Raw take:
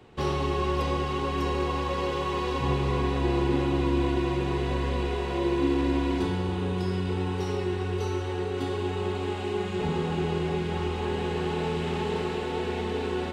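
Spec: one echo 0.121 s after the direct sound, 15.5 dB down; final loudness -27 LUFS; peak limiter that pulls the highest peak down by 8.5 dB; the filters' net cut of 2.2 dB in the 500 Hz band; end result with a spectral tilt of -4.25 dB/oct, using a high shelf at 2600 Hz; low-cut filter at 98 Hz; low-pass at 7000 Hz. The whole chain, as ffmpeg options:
-af "highpass=98,lowpass=7k,equalizer=f=500:t=o:g=-3.5,highshelf=f=2.6k:g=7.5,alimiter=limit=-23.5dB:level=0:latency=1,aecho=1:1:121:0.168,volume=5dB"

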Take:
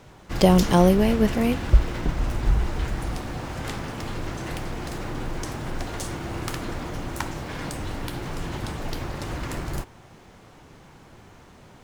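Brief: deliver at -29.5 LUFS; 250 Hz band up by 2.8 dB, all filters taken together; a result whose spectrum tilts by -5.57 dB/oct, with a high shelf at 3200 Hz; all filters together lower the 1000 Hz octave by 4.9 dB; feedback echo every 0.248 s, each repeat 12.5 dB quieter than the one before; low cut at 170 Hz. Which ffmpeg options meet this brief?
-af "highpass=170,equalizer=f=250:t=o:g=6.5,equalizer=f=1k:t=o:g=-8,highshelf=f=3.2k:g=4.5,aecho=1:1:248|496|744:0.237|0.0569|0.0137,volume=-4dB"

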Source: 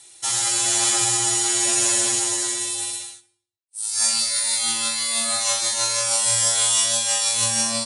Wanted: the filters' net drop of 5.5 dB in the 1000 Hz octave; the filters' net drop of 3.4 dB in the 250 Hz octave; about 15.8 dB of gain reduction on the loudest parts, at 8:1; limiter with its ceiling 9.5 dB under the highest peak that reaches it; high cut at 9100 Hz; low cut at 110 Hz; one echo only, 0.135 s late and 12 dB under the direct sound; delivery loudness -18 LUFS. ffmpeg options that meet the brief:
-af "highpass=110,lowpass=9.1k,equalizer=f=250:t=o:g=-4.5,equalizer=f=1k:t=o:g=-7,acompressor=threshold=-35dB:ratio=8,alimiter=level_in=8dB:limit=-24dB:level=0:latency=1,volume=-8dB,aecho=1:1:135:0.251,volume=20.5dB"

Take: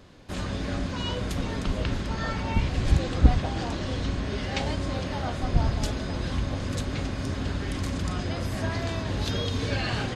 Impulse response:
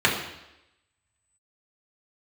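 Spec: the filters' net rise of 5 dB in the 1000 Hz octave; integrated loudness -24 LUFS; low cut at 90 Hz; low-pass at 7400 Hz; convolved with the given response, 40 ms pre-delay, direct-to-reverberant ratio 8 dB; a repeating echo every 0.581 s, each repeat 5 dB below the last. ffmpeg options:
-filter_complex "[0:a]highpass=90,lowpass=7.4k,equalizer=f=1k:t=o:g=6.5,aecho=1:1:581|1162|1743|2324|2905|3486|4067:0.562|0.315|0.176|0.0988|0.0553|0.031|0.0173,asplit=2[a][b];[1:a]atrim=start_sample=2205,adelay=40[c];[b][c]afir=irnorm=-1:irlink=0,volume=-26.5dB[d];[a][d]amix=inputs=2:normalize=0,volume=3.5dB"

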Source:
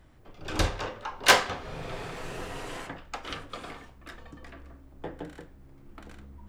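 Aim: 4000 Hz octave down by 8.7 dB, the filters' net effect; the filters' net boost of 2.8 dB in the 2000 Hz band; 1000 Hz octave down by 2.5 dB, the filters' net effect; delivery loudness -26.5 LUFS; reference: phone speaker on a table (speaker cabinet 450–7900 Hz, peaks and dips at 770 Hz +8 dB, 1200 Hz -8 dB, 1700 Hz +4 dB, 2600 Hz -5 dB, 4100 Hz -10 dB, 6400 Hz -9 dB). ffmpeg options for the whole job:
-af "highpass=f=450:w=0.5412,highpass=f=450:w=1.3066,equalizer=f=770:t=q:w=4:g=8,equalizer=f=1.2k:t=q:w=4:g=-8,equalizer=f=1.7k:t=q:w=4:g=4,equalizer=f=2.6k:t=q:w=4:g=-5,equalizer=f=4.1k:t=q:w=4:g=-10,equalizer=f=6.4k:t=q:w=4:g=-9,lowpass=f=7.9k:w=0.5412,lowpass=f=7.9k:w=1.3066,equalizer=f=1k:t=o:g=-8.5,equalizer=f=2k:t=o:g=8,equalizer=f=4k:t=o:g=-9,volume=3.5dB"

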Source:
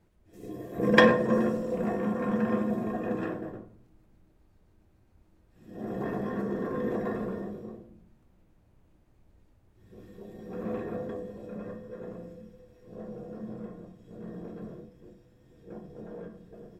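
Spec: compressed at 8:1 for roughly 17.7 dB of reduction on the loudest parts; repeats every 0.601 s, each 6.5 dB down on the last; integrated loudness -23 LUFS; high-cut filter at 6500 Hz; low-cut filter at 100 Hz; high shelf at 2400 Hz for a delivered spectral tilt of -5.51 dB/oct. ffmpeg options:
-af "highpass=100,lowpass=6.5k,highshelf=f=2.4k:g=-7,acompressor=threshold=-33dB:ratio=8,aecho=1:1:601|1202|1803|2404|3005|3606:0.473|0.222|0.105|0.0491|0.0231|0.0109,volume=16.5dB"

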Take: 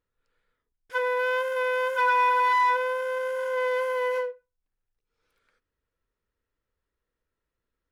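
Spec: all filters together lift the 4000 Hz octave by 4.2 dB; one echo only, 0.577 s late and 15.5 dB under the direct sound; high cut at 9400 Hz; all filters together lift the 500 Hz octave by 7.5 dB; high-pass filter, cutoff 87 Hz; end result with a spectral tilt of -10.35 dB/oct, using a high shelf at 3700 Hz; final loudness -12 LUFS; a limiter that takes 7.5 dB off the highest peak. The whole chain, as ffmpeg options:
-af "highpass=87,lowpass=9.4k,equalizer=f=500:t=o:g=7.5,highshelf=f=3.7k:g=-5,equalizer=f=4k:t=o:g=8.5,alimiter=limit=-18.5dB:level=0:latency=1,aecho=1:1:577:0.168,volume=13dB"

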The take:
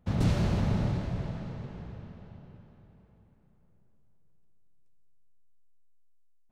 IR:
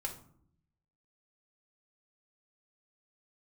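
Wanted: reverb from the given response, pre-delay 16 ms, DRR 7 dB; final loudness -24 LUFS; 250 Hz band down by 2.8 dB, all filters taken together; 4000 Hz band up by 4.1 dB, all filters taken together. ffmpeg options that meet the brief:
-filter_complex "[0:a]equalizer=f=250:t=o:g=-4.5,equalizer=f=4k:t=o:g=5,asplit=2[a][b];[1:a]atrim=start_sample=2205,adelay=16[c];[b][c]afir=irnorm=-1:irlink=0,volume=-7.5dB[d];[a][d]amix=inputs=2:normalize=0,volume=6dB"

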